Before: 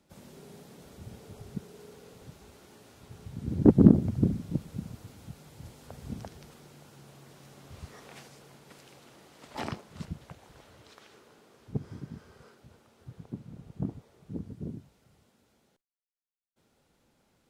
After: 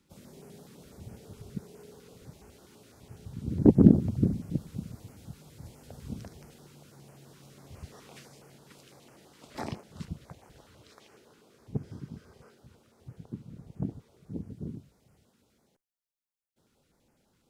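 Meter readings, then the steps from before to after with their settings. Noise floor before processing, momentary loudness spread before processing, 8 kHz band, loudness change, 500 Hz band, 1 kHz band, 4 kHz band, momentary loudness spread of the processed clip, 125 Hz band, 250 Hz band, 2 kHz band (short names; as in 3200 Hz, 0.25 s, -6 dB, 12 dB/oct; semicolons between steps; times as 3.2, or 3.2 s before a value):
-71 dBFS, 26 LU, -0.5 dB, 0.0 dB, -0.5 dB, -2.5 dB, -2.5 dB, 26 LU, 0.0 dB, 0.0 dB, -3.5 dB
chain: stepped notch 12 Hz 670–3700 Hz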